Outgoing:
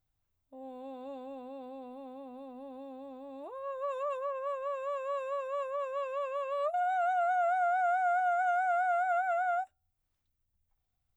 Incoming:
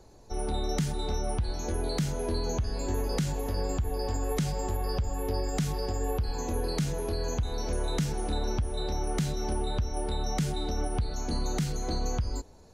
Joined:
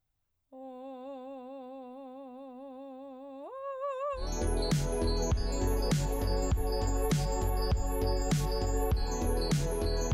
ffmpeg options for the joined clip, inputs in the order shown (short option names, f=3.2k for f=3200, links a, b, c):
-filter_complex "[0:a]apad=whole_dur=10.13,atrim=end=10.13,atrim=end=4.29,asetpts=PTS-STARTPTS[a];[1:a]atrim=start=1.4:end=7.4,asetpts=PTS-STARTPTS[b];[a][b]acrossfade=d=0.16:c1=tri:c2=tri"